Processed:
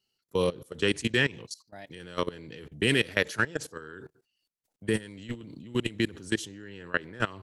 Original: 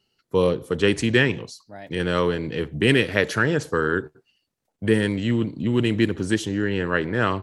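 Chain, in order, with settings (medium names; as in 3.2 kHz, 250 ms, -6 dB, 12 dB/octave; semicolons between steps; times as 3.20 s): level held to a coarse grid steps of 20 dB; treble shelf 3.2 kHz +10.5 dB; trim -4.5 dB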